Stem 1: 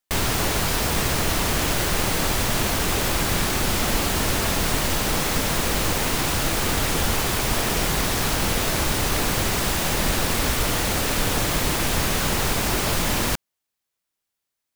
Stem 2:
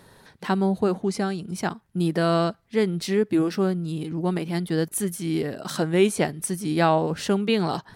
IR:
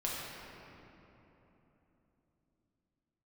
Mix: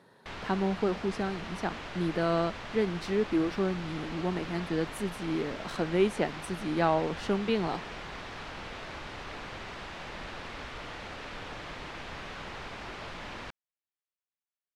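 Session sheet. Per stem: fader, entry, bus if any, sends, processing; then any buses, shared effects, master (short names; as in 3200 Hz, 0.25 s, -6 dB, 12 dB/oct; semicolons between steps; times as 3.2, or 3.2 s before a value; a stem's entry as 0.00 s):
-12.5 dB, 0.15 s, no send, LPF 3800 Hz 12 dB/oct; low shelf 470 Hz -9.5 dB
-5.5 dB, 0.00 s, no send, HPF 170 Hz; high shelf 8100 Hz -6.5 dB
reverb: off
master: high shelf 4900 Hz -10 dB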